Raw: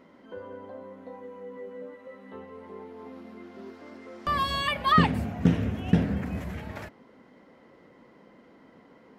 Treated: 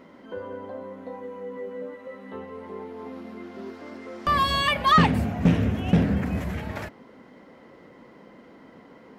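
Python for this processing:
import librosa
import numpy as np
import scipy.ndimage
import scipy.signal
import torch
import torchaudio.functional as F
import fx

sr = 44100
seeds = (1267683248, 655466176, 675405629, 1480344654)

y = fx.rattle_buzz(x, sr, strikes_db=-19.0, level_db=-30.0)
y = 10.0 ** (-16.0 / 20.0) * np.tanh(y / 10.0 ** (-16.0 / 20.0))
y = F.gain(torch.from_numpy(y), 5.5).numpy()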